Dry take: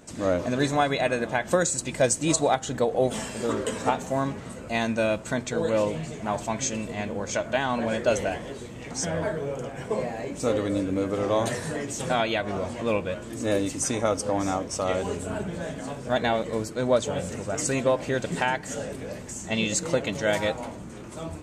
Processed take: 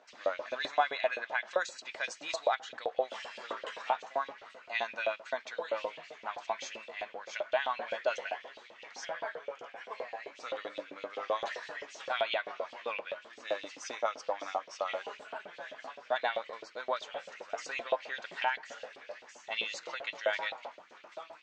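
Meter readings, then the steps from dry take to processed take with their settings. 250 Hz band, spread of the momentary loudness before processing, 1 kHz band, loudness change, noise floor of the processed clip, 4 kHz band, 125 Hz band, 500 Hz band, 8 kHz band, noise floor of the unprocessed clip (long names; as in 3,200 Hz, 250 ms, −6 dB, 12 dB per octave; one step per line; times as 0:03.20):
−27.0 dB, 9 LU, −6.0 dB, −9.5 dB, −57 dBFS, −6.5 dB, below −35 dB, −10.5 dB, −20.5 dB, −40 dBFS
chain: inverse Chebyshev low-pass filter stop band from 11,000 Hz, stop band 50 dB
auto-filter high-pass saw up 7.7 Hz 530–3,300 Hz
level −8.5 dB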